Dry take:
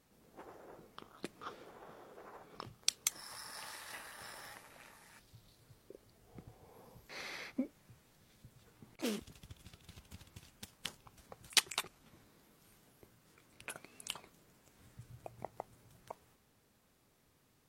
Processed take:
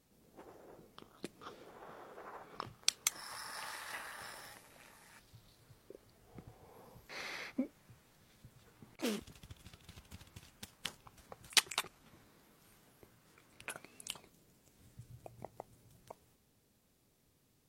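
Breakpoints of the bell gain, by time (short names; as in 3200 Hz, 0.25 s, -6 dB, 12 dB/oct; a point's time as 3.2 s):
bell 1300 Hz 2.1 oct
1.52 s -5 dB
1.96 s +5 dB
4.15 s +5 dB
4.61 s -6 dB
5.24 s +2 dB
13.75 s +2 dB
14.19 s -6.5 dB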